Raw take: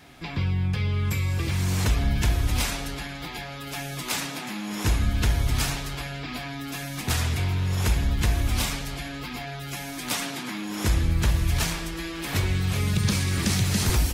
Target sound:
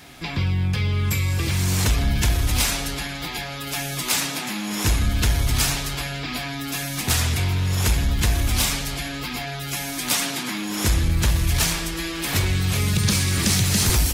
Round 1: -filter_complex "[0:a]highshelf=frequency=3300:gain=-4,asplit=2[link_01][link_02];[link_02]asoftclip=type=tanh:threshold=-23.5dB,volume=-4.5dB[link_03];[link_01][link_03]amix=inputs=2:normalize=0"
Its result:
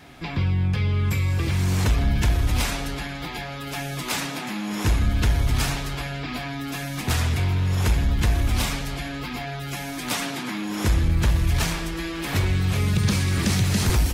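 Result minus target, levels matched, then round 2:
8,000 Hz band −6.5 dB
-filter_complex "[0:a]highshelf=frequency=3300:gain=6.5,asplit=2[link_01][link_02];[link_02]asoftclip=type=tanh:threshold=-23.5dB,volume=-4.5dB[link_03];[link_01][link_03]amix=inputs=2:normalize=0"

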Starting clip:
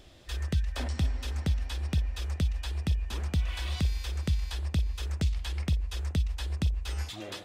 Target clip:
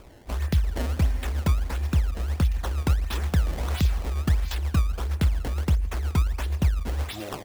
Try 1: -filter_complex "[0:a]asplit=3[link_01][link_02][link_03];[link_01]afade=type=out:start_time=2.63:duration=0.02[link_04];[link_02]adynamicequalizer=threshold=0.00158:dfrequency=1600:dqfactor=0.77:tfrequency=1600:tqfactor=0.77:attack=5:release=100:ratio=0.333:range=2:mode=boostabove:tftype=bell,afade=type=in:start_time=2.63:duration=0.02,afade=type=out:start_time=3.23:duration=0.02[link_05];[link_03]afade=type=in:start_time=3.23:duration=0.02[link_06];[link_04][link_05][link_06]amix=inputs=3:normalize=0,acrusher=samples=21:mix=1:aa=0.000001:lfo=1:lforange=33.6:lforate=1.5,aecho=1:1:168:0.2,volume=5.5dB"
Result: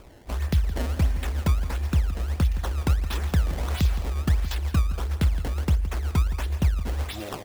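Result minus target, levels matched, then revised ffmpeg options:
echo-to-direct +10 dB
-filter_complex "[0:a]asplit=3[link_01][link_02][link_03];[link_01]afade=type=out:start_time=2.63:duration=0.02[link_04];[link_02]adynamicequalizer=threshold=0.00158:dfrequency=1600:dqfactor=0.77:tfrequency=1600:tqfactor=0.77:attack=5:release=100:ratio=0.333:range=2:mode=boostabove:tftype=bell,afade=type=in:start_time=2.63:duration=0.02,afade=type=out:start_time=3.23:duration=0.02[link_05];[link_03]afade=type=in:start_time=3.23:duration=0.02[link_06];[link_04][link_05][link_06]amix=inputs=3:normalize=0,acrusher=samples=21:mix=1:aa=0.000001:lfo=1:lforange=33.6:lforate=1.5,aecho=1:1:168:0.0631,volume=5.5dB"

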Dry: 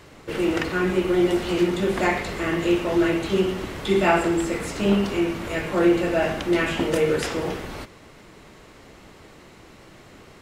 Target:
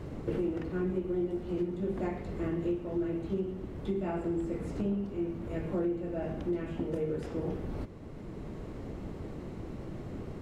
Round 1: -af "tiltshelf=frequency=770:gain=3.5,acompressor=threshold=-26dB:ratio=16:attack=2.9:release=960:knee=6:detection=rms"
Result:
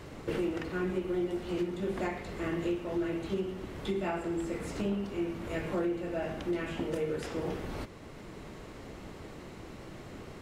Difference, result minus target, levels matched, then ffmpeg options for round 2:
1,000 Hz band +3.5 dB
-af "tiltshelf=frequency=770:gain=11,acompressor=threshold=-26dB:ratio=16:attack=2.9:release=960:knee=6:detection=rms"

